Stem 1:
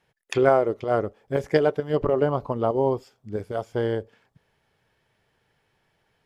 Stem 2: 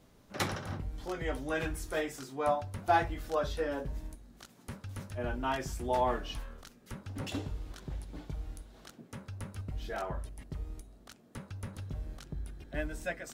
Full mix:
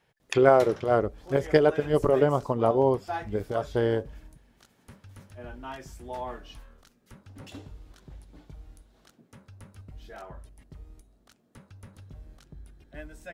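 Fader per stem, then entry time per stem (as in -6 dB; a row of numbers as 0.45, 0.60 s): 0.0, -6.5 dB; 0.00, 0.20 s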